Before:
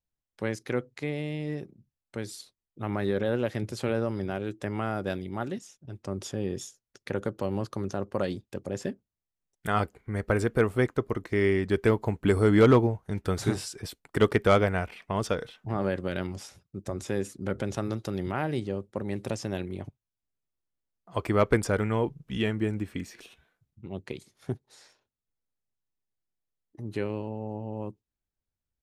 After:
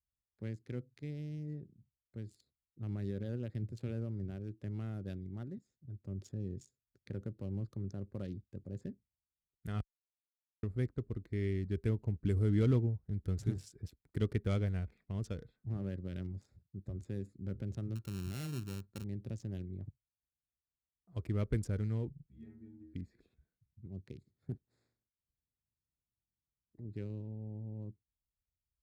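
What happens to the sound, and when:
9.81–10.63 mute
17.95–19.04 sample sorter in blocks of 32 samples
22.26–22.94 metallic resonator 74 Hz, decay 0.8 s, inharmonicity 0.008
24.5–26.89 spectral limiter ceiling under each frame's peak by 13 dB
whole clip: Wiener smoothing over 15 samples; HPF 44 Hz; passive tone stack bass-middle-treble 10-0-1; gain +7.5 dB

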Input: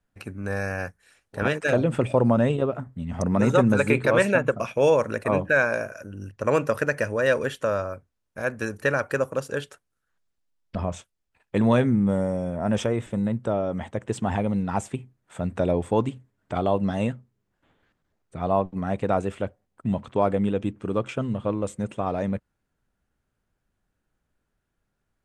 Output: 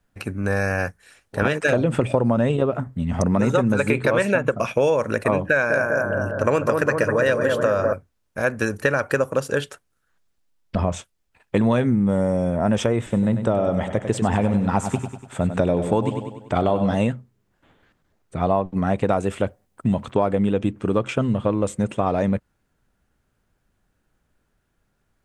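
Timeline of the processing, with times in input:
5.49–7.93 analogue delay 0.2 s, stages 2048, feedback 63%, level -4.5 dB
13.02–16.95 feedback echo 97 ms, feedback 51%, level -10 dB
19.09–20.11 high shelf 6800 Hz +6.5 dB
whole clip: compressor, threshold -23 dBFS; gain +7.5 dB

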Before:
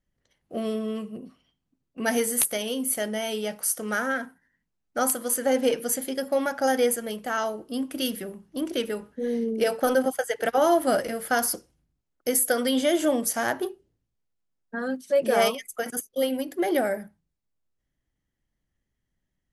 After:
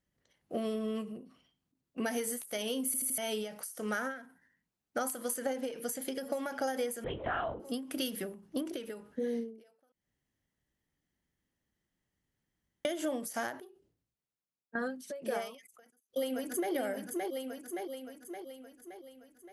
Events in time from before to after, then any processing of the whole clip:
2.86 stutter in place 0.08 s, 4 plays
5.72–6.45 echo throw 0.44 s, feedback 50%, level -16.5 dB
7.04–7.6 LPC vocoder at 8 kHz whisper
8.34–8.83 bell 380 Hz +2.5 dB 2.8 oct
9.92–12.85 room tone
13.61–14.75 fade out, to -14.5 dB
15.64–16.73 echo throw 0.57 s, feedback 55%, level -7.5 dB
whole clip: HPF 100 Hz 6 dB/oct; compressor, threshold -31 dBFS; ending taper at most 110 dB/s

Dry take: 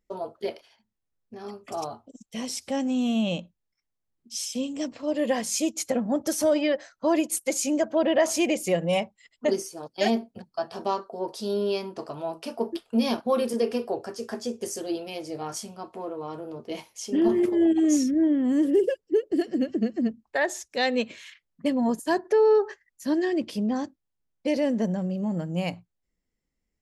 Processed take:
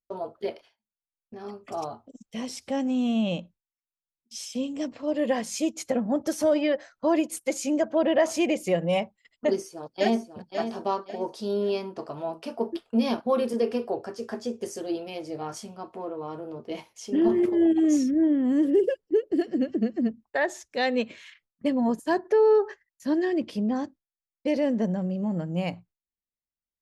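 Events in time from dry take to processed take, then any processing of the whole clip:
9.46–10.31 echo throw 0.54 s, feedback 35%, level -8.5 dB
whole clip: gate with hold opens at -44 dBFS; high shelf 4900 Hz -9.5 dB

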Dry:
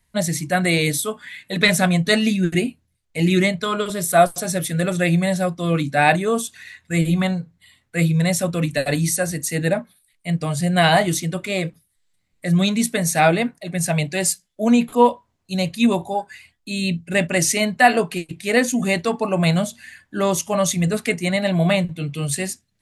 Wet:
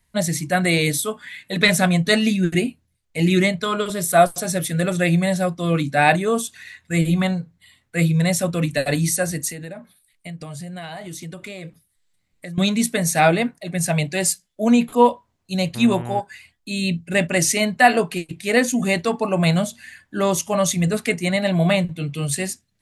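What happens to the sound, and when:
9.5–12.58 compressor 12:1, threshold -30 dBFS
15.74–16.19 buzz 120 Hz, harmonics 27, -31 dBFS -7 dB/oct

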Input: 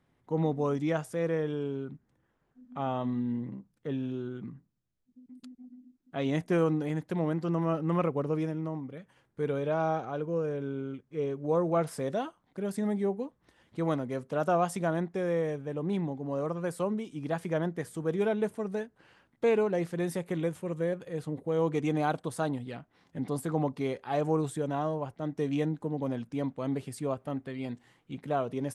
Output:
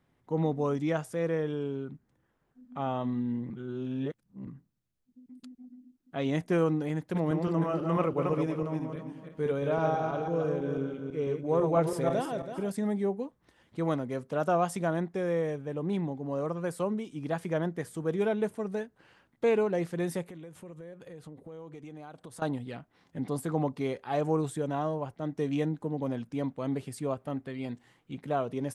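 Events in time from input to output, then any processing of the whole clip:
3.5–4.47 reverse
6.98–12.72 regenerating reverse delay 0.165 s, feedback 49%, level -4 dB
20.25–22.42 compressor, threshold -43 dBFS

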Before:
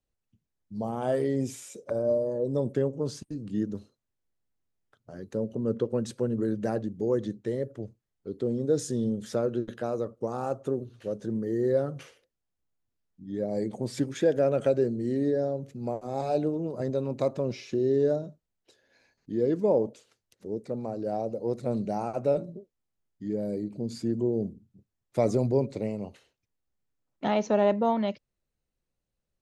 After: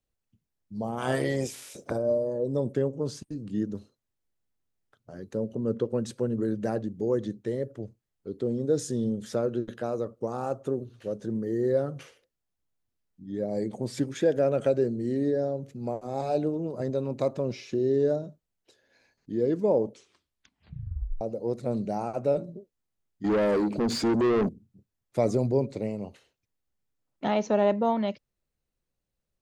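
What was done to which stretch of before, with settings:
0.97–1.96 spectral limiter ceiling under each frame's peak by 18 dB
19.86 tape stop 1.35 s
23.24–24.49 overdrive pedal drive 28 dB, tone 2900 Hz, clips at -16.5 dBFS

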